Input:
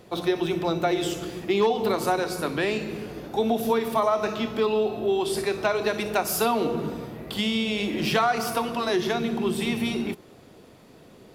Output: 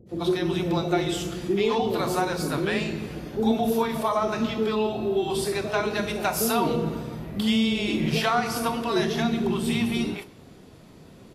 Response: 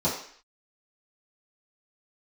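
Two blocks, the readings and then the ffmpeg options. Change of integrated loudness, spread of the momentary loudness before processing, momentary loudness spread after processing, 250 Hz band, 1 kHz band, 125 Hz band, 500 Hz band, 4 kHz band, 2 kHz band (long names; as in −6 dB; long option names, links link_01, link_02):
0.0 dB, 7 LU, 5 LU, +2.5 dB, −1.0 dB, +4.5 dB, −1.5 dB, 0.0 dB, −0.5 dB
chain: -filter_complex "[0:a]lowshelf=frequency=200:gain=6,acrossover=split=480[link_01][link_02];[link_02]adelay=90[link_03];[link_01][link_03]amix=inputs=2:normalize=0,asplit=2[link_04][link_05];[1:a]atrim=start_sample=2205,adelay=26[link_06];[link_05][link_06]afir=irnorm=-1:irlink=0,volume=-24.5dB[link_07];[link_04][link_07]amix=inputs=2:normalize=0" -ar 48000 -c:a libvorbis -b:a 32k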